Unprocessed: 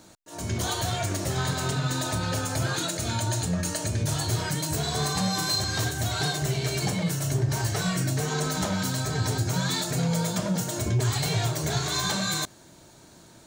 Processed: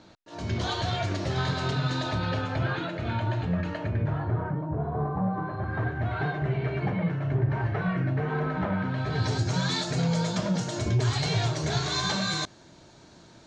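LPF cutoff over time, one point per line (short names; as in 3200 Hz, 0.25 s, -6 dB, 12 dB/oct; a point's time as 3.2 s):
LPF 24 dB/oct
1.92 s 4700 Hz
2.84 s 2800 Hz
3.73 s 2800 Hz
4.65 s 1100 Hz
5.23 s 1100 Hz
6.1 s 2200 Hz
8.87 s 2200 Hz
9.34 s 5900 Hz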